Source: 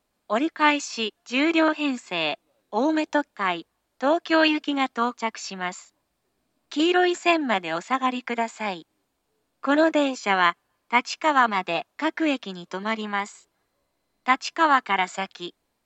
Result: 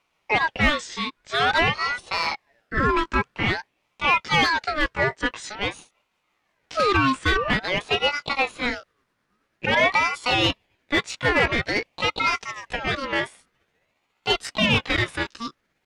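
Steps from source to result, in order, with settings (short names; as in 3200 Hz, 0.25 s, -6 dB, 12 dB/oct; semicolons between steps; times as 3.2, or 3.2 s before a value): gliding pitch shift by +5 st starting unshifted; overdrive pedal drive 18 dB, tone 1600 Hz, clips at -5.5 dBFS; ring modulator with a swept carrier 1200 Hz, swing 45%, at 0.49 Hz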